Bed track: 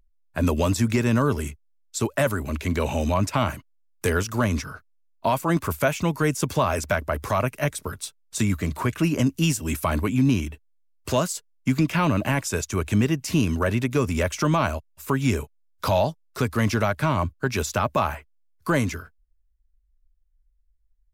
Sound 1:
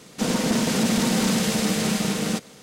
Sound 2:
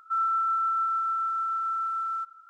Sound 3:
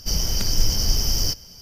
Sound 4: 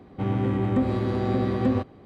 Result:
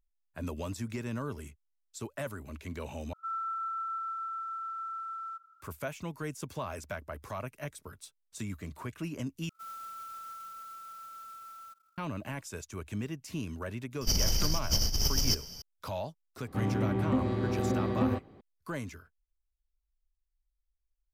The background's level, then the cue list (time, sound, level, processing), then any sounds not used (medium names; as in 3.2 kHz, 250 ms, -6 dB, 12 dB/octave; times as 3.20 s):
bed track -15.5 dB
3.13 s: replace with 2 -9.5 dB
9.49 s: replace with 2 -18 dB + sampling jitter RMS 0.027 ms
14.01 s: add 3 -4.5 dB + compressor with a negative ratio -23 dBFS
16.36 s: add 4 -5.5 dB
not used: 1